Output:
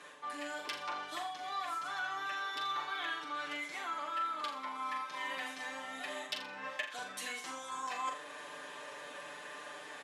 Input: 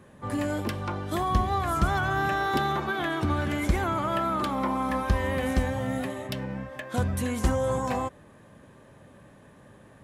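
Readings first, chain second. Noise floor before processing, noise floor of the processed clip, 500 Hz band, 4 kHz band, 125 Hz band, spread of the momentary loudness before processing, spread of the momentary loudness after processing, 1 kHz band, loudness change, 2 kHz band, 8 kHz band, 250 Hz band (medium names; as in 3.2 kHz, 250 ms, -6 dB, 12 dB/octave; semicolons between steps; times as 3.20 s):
-53 dBFS, -49 dBFS, -17.5 dB, -2.5 dB, under -35 dB, 7 LU, 9 LU, -9.5 dB, -11.5 dB, -6.5 dB, -6.5 dB, -23.0 dB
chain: reverse; compression 12:1, threshold -40 dBFS, peak gain reduction 23.5 dB; reverse; comb 6.8 ms, depth 95%; gain riding within 3 dB 0.5 s; band-pass 360–4600 Hz; tilt EQ +4.5 dB/octave; flutter echo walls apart 7.1 m, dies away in 0.4 s; trim +2.5 dB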